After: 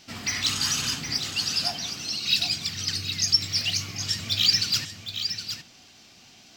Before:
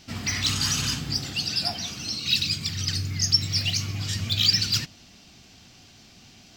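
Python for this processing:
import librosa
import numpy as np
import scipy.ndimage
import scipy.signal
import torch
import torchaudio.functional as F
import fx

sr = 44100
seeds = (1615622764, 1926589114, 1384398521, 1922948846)

p1 = fx.low_shelf(x, sr, hz=190.0, db=-11.5)
y = p1 + fx.echo_single(p1, sr, ms=765, db=-8.5, dry=0)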